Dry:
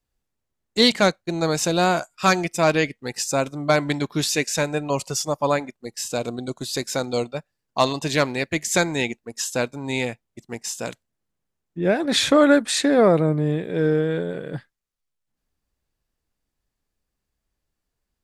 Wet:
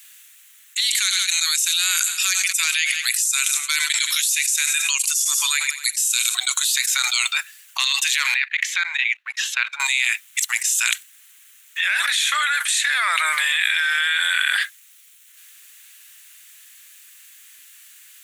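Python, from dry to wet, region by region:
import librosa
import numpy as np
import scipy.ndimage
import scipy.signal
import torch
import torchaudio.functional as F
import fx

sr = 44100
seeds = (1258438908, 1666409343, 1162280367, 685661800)

y = fx.chain(x, sr, fx.cheby1_lowpass(hz=12000.0, order=6),
    fx.pre_emphasis(coefficient=0.9),
    fx.echo_feedback(ms=86, feedback_pct=53, wet_db=-23.0), at=(0.8, 6.35))
y = fx.chain(y, sr, fx.level_steps(step_db=22),
    fx.air_absorb(metres=320.0), at=(8.34, 9.8))
y = scipy.signal.sosfilt(scipy.signal.bessel(6, 2700.0, 'highpass', norm='mag', fs=sr, output='sos'), y)
y = fx.peak_eq(y, sr, hz=4900.0, db=-12.0, octaves=0.52)
y = fx.env_flatten(y, sr, amount_pct=100)
y = F.gain(torch.from_numpy(y), 3.0).numpy()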